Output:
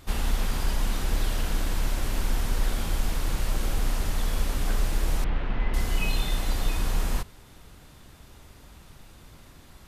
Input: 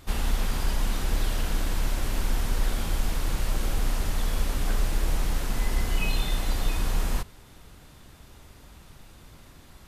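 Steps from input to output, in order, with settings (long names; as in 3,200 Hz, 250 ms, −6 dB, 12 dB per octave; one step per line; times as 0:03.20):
0:05.24–0:05.74: low-pass filter 3,000 Hz 24 dB per octave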